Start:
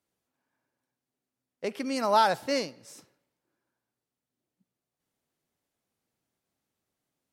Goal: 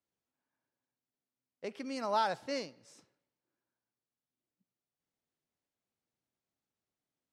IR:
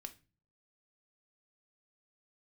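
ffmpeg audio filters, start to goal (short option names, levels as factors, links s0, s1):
-af "lowpass=7800,volume=0.376"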